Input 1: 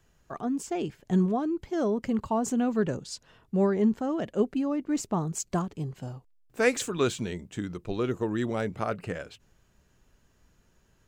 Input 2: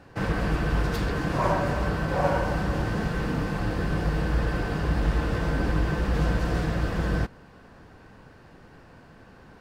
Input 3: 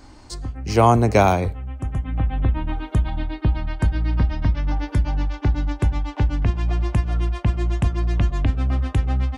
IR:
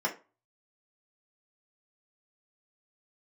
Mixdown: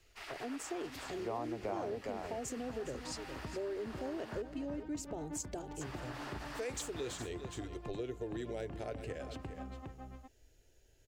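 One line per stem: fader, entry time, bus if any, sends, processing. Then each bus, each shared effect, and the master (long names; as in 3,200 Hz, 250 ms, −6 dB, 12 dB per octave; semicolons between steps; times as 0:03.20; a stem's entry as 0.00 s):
−0.5 dB, 0.00 s, no send, echo send −13 dB, brickwall limiter −19.5 dBFS, peak gain reduction 9 dB; phaser with its sweep stopped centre 460 Hz, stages 4
−7.0 dB, 0.00 s, muted 0:04.42–0:05.81, no send, echo send −12.5 dB, gate on every frequency bin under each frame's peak −20 dB weak
−12.5 dB, 0.50 s, no send, echo send −5 dB, resonant band-pass 560 Hz, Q 0.63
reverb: not used
echo: single-tap delay 410 ms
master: downward compressor 2.5 to 1, threshold −41 dBFS, peak gain reduction 13 dB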